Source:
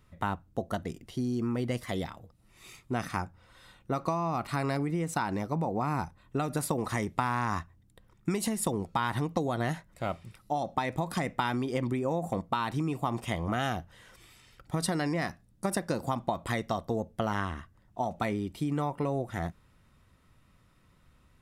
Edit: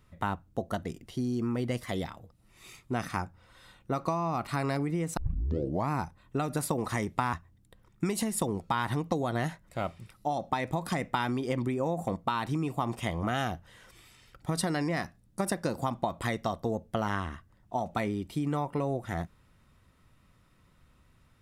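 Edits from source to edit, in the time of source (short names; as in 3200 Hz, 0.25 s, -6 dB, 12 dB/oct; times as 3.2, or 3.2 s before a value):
5.17 tape start 0.73 s
7.33–7.58 cut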